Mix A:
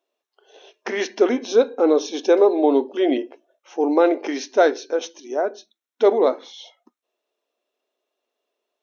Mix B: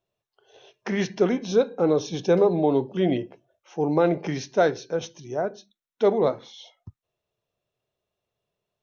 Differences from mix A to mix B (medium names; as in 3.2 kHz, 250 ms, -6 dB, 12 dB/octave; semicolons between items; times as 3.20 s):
speech -4.5 dB; master: remove brick-wall FIR high-pass 230 Hz